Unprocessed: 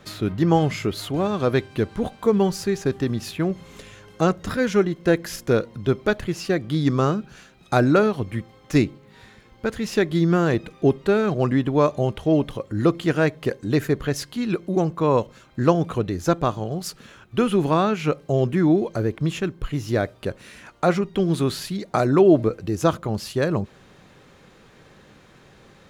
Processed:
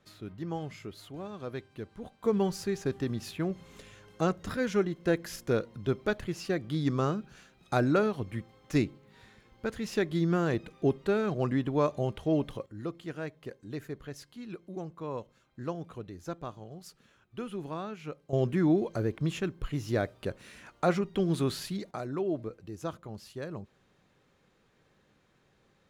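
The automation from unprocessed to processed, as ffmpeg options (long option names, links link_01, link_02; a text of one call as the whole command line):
ffmpeg -i in.wav -af "asetnsamples=nb_out_samples=441:pad=0,asendcmd='2.24 volume volume -8.5dB;12.66 volume volume -18dB;18.33 volume volume -7dB;21.91 volume volume -17dB',volume=-18dB" out.wav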